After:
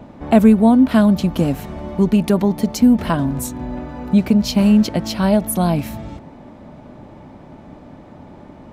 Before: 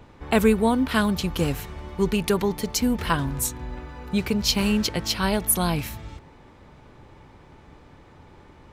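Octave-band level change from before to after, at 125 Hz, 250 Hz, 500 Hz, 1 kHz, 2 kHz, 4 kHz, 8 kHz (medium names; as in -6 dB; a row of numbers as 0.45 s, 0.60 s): +8.0 dB, +10.5 dB, +5.0 dB, +4.0 dB, -1.5 dB, -2.5 dB, -3.0 dB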